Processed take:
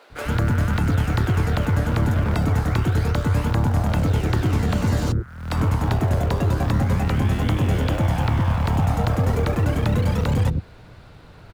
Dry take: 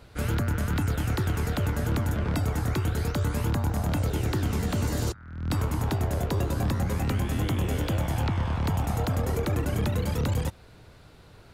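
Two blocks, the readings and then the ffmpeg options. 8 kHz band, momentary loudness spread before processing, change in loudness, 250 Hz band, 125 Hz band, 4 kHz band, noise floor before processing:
0.0 dB, 1 LU, +6.5 dB, +6.0 dB, +7.0 dB, +3.5 dB, -51 dBFS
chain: -filter_complex "[0:a]lowpass=f=2900:p=1,equalizer=f=68:t=o:w=0.25:g=-3.5,asplit=2[s0][s1];[s1]acrusher=bits=3:mode=log:mix=0:aa=0.000001,volume=0.251[s2];[s0][s2]amix=inputs=2:normalize=0,acrossover=split=380[s3][s4];[s3]adelay=100[s5];[s5][s4]amix=inputs=2:normalize=0,volume=1.88"

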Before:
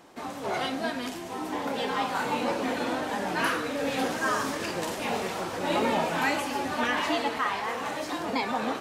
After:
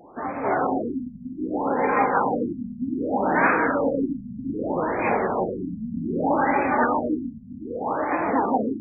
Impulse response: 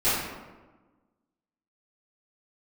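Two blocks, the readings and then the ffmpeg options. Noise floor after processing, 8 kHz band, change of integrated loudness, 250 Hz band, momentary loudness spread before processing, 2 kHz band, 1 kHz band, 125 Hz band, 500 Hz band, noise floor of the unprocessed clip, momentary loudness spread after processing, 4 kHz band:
-40 dBFS, under -40 dB, +5.0 dB, +7.0 dB, 6 LU, +2.0 dB, +5.5 dB, +6.0 dB, +5.5 dB, -37 dBFS, 11 LU, under -40 dB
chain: -filter_complex "[0:a]equalizer=f=150:t=o:w=1.7:g=-3,asplit=2[s0][s1];[1:a]atrim=start_sample=2205,asetrate=48510,aresample=44100,adelay=150[s2];[s1][s2]afir=irnorm=-1:irlink=0,volume=0.112[s3];[s0][s3]amix=inputs=2:normalize=0,afftfilt=real='re*lt(b*sr/1024,240*pow(2600/240,0.5+0.5*sin(2*PI*0.64*pts/sr)))':imag='im*lt(b*sr/1024,240*pow(2600/240,0.5+0.5*sin(2*PI*0.64*pts/sr)))':win_size=1024:overlap=0.75,volume=2.37"

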